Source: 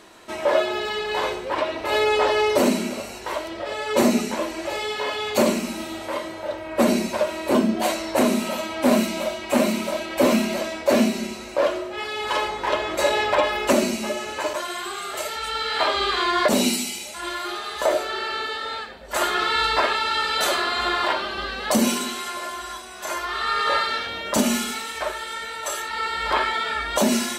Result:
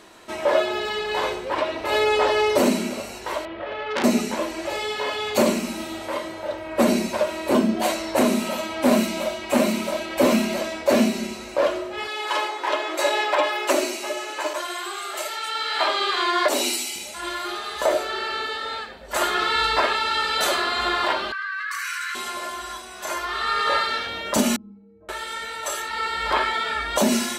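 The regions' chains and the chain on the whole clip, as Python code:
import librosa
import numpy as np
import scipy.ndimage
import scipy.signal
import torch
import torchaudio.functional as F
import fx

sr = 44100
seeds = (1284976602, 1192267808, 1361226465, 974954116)

y = fx.chain(x, sr, fx.cheby2_lowpass(hz=7600.0, order=4, stop_db=50),
    fx.transformer_sat(knee_hz=3300.0), at=(3.45, 4.04))
y = fx.chain(y, sr, fx.steep_highpass(hz=280.0, slope=72),
    fx.peak_eq(hz=470.0, db=-9.0, octaves=0.27), at=(12.07, 16.96))
y = fx.chain(y, sr, fx.cheby_ripple_highpass(hz=1100.0, ripple_db=9),
    fx.high_shelf_res(hz=2700.0, db=-9.0, q=3.0),
    fx.env_flatten(amount_pct=100), at=(21.32, 22.15))
y = fx.chain(y, sr, fx.lowpass_res(hz=280.0, q=1.6),
    fx.low_shelf(hz=160.0, db=9.5),
    fx.stiff_resonator(f0_hz=95.0, decay_s=0.75, stiffness=0.03), at=(24.56, 25.09))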